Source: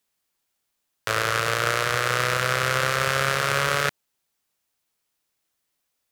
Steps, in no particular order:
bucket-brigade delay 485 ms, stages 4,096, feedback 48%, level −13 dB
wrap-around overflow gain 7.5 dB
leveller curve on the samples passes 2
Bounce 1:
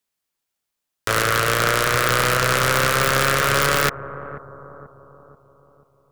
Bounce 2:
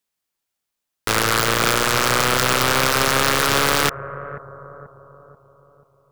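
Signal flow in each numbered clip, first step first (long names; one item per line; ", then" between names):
wrap-around overflow, then leveller curve on the samples, then bucket-brigade delay
leveller curve on the samples, then bucket-brigade delay, then wrap-around overflow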